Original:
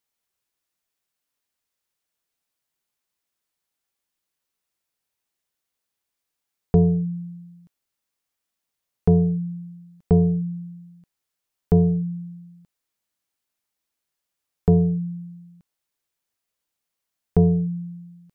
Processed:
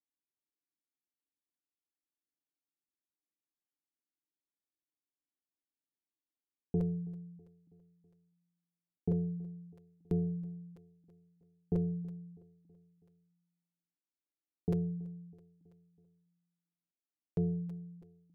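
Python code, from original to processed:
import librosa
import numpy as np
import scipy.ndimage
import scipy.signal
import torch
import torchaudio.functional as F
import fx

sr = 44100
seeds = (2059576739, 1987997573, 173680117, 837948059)

y = fx.formant_cascade(x, sr, vowel='u')
y = fx.air_absorb(y, sr, metres=460.0)
y = fx.notch_comb(y, sr, f0_hz=930.0)
y = fx.echo_feedback(y, sr, ms=325, feedback_pct=56, wet_db=-22.0)
y = fx.buffer_crackle(y, sr, first_s=0.86, period_s=0.33, block=256, kind='repeat')
y = y * 10.0 ** (-2.0 / 20.0)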